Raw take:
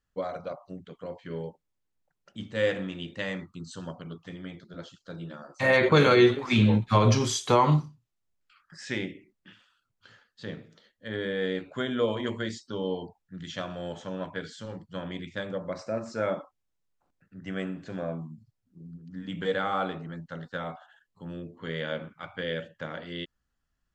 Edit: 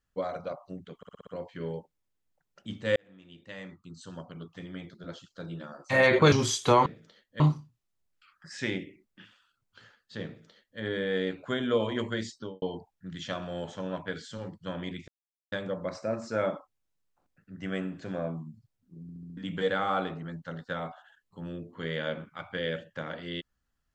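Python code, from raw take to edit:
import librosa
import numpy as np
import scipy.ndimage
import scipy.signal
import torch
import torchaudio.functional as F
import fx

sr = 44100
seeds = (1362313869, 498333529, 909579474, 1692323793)

y = fx.studio_fade_out(x, sr, start_s=12.64, length_s=0.26)
y = fx.edit(y, sr, fx.stutter(start_s=0.97, slice_s=0.06, count=6),
    fx.fade_in_span(start_s=2.66, length_s=1.92),
    fx.cut(start_s=6.02, length_s=1.12),
    fx.duplicate(start_s=10.54, length_s=0.54, to_s=7.68),
    fx.insert_silence(at_s=15.36, length_s=0.44),
    fx.stutter_over(start_s=18.86, slice_s=0.07, count=5), tone=tone)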